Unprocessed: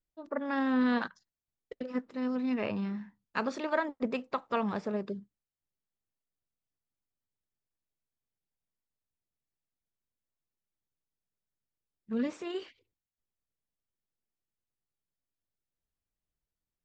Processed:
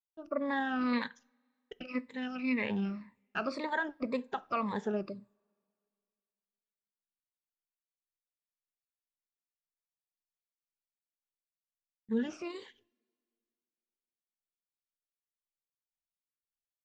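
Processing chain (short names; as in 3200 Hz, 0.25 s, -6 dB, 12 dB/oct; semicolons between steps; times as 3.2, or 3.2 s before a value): moving spectral ripple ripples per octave 1, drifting -1.9 Hz, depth 16 dB; gate with hold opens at -53 dBFS; in parallel at 0 dB: limiter -22 dBFS, peak gain reduction 8.5 dB; 0.93–2.7 on the sum: fifteen-band EQ 400 Hz -4 dB, 1000 Hz -4 dB, 2500 Hz +12 dB; two-slope reverb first 0.37 s, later 2.6 s, from -27 dB, DRR 19 dB; gain -9 dB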